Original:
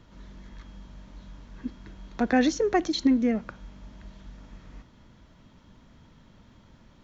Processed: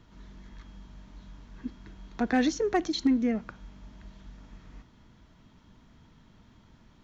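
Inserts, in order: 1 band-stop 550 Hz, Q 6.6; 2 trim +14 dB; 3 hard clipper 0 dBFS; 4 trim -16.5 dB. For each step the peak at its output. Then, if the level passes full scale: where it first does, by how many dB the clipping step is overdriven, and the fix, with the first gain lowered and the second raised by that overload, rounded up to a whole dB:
-11.0 dBFS, +3.0 dBFS, 0.0 dBFS, -16.5 dBFS; step 2, 3.0 dB; step 2 +11 dB, step 4 -13.5 dB

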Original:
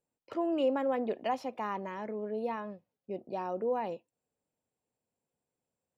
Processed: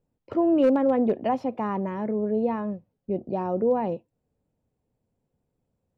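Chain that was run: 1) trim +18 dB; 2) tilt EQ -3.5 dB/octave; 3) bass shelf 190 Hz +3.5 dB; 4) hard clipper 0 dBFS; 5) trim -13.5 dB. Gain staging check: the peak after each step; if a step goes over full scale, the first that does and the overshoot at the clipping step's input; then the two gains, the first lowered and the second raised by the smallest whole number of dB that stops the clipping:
-1.5 dBFS, +2.5 dBFS, +3.0 dBFS, 0.0 dBFS, -13.5 dBFS; step 2, 3.0 dB; step 1 +15 dB, step 5 -10.5 dB

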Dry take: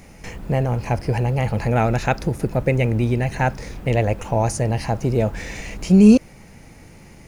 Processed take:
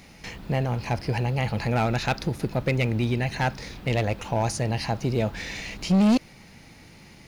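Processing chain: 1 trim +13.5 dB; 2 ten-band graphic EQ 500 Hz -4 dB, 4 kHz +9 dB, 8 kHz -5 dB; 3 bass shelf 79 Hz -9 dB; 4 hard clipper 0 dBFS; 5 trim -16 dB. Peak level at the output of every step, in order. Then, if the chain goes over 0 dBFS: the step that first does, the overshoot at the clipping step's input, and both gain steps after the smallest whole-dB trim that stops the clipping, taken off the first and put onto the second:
+11.0 dBFS, +10.5 dBFS, +9.5 dBFS, 0.0 dBFS, -16.0 dBFS; step 1, 9.5 dB; step 1 +3.5 dB, step 5 -6 dB

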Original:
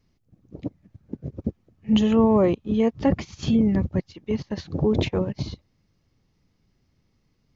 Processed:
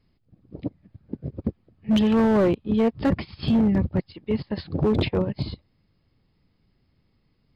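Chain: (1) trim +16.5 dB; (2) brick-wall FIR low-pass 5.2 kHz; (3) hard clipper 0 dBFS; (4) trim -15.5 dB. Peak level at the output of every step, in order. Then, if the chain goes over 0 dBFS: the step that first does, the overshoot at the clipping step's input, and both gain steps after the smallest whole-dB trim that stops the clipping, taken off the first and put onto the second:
+9.0 dBFS, +9.0 dBFS, 0.0 dBFS, -15.5 dBFS; step 1, 9.0 dB; step 1 +7.5 dB, step 4 -6.5 dB

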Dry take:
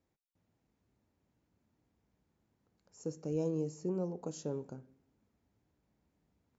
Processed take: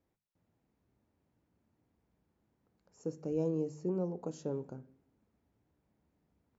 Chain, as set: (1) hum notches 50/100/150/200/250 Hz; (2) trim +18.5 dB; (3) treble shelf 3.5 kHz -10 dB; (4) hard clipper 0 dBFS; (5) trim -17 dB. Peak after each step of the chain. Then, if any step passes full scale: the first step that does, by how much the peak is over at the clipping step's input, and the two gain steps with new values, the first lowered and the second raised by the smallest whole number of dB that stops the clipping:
-24.0 dBFS, -5.5 dBFS, -5.5 dBFS, -5.5 dBFS, -22.5 dBFS; nothing clips

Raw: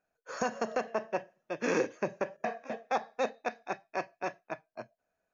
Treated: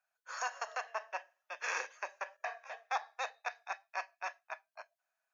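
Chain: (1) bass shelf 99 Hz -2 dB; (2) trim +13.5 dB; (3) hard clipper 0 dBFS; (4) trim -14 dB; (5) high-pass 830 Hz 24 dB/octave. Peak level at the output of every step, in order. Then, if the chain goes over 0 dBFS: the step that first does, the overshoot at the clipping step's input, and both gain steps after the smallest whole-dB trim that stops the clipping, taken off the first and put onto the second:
-17.5 dBFS, -4.0 dBFS, -4.0 dBFS, -18.0 dBFS, -21.0 dBFS; nothing clips

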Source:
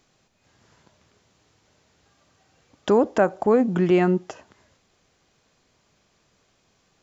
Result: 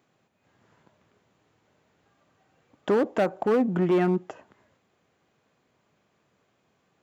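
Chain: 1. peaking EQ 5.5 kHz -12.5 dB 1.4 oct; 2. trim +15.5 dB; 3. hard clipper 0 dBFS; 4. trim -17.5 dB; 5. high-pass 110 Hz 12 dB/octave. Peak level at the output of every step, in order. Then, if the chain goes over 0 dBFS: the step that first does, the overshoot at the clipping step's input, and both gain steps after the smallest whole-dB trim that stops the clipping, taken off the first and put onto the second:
-6.5 dBFS, +9.0 dBFS, 0.0 dBFS, -17.5 dBFS, -13.0 dBFS; step 2, 9.0 dB; step 2 +6.5 dB, step 4 -8.5 dB

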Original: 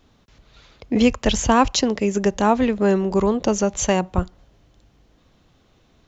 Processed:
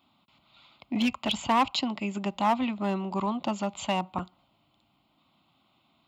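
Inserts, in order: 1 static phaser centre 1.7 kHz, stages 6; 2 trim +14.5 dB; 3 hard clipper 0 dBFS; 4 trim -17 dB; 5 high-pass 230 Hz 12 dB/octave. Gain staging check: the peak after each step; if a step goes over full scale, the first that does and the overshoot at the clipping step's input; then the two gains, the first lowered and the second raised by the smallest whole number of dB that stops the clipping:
-6.0 dBFS, +8.5 dBFS, 0.0 dBFS, -17.0 dBFS, -12.5 dBFS; step 2, 8.5 dB; step 2 +5.5 dB, step 4 -8 dB

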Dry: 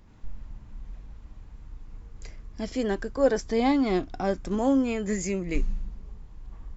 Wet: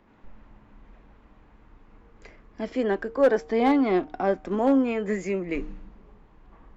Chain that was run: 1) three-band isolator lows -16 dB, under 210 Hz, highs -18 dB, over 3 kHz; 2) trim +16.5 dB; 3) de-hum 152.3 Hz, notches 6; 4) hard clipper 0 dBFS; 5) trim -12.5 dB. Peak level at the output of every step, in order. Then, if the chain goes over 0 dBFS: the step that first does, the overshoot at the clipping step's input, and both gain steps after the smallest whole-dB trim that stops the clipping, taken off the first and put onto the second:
-11.0 dBFS, +5.5 dBFS, +5.5 dBFS, 0.0 dBFS, -12.5 dBFS; step 2, 5.5 dB; step 2 +10.5 dB, step 5 -6.5 dB

